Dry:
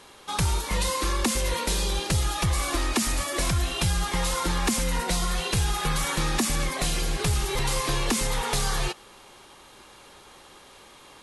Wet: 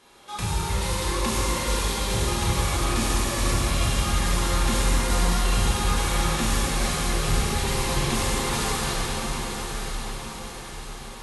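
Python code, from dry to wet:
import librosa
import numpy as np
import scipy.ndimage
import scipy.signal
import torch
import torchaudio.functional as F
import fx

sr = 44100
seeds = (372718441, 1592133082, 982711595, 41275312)

p1 = x + fx.echo_diffused(x, sr, ms=1000, feedback_pct=49, wet_db=-7.5, dry=0)
p2 = fx.rev_plate(p1, sr, seeds[0], rt60_s=4.8, hf_ratio=0.8, predelay_ms=0, drr_db=-9.0)
y = F.gain(torch.from_numpy(p2), -8.5).numpy()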